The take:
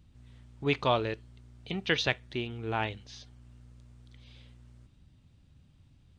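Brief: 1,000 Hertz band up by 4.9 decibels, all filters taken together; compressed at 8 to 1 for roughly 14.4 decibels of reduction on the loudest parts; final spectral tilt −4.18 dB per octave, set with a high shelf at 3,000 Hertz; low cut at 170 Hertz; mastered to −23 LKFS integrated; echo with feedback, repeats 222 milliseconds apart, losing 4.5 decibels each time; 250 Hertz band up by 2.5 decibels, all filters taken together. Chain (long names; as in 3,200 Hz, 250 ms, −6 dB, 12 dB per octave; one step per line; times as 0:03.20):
high-pass filter 170 Hz
parametric band 250 Hz +4 dB
parametric band 1,000 Hz +5.5 dB
high-shelf EQ 3,000 Hz +5 dB
downward compressor 8 to 1, threshold −34 dBFS
repeating echo 222 ms, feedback 60%, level −4.5 dB
level +16 dB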